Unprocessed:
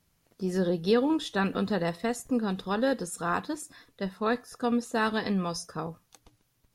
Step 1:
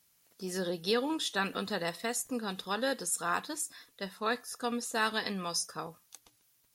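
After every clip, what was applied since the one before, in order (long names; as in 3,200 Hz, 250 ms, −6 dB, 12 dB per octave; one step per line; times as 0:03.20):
spectral tilt +3 dB per octave
level −3 dB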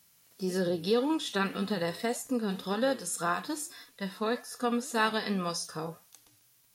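harmonic and percussive parts rebalanced percussive −14 dB
in parallel at +2 dB: downward compressor, threshold −41 dBFS, peak gain reduction 14 dB
on the sum: flanger 1.8 Hz, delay 3.4 ms, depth 7.1 ms, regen +89%
level +7 dB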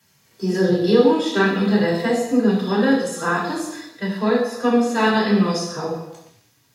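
convolution reverb RT60 0.90 s, pre-delay 3 ms, DRR −5 dB
level −3.5 dB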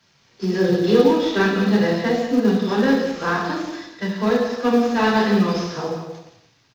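variable-slope delta modulation 32 kbit/s
single-tap delay 176 ms −11 dB
log-companded quantiser 8 bits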